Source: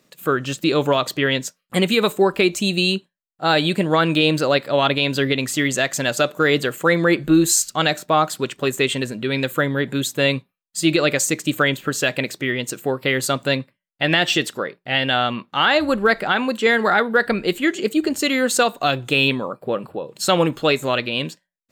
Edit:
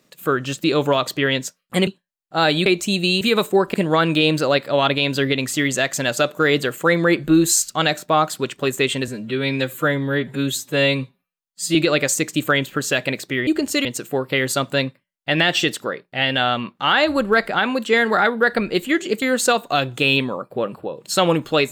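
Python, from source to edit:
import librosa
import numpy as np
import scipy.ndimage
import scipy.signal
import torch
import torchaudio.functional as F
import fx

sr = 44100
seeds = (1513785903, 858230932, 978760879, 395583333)

y = fx.edit(x, sr, fx.swap(start_s=1.87, length_s=0.53, other_s=2.95, other_length_s=0.79),
    fx.stretch_span(start_s=9.08, length_s=1.78, factor=1.5),
    fx.move(start_s=17.95, length_s=0.38, to_s=12.58), tone=tone)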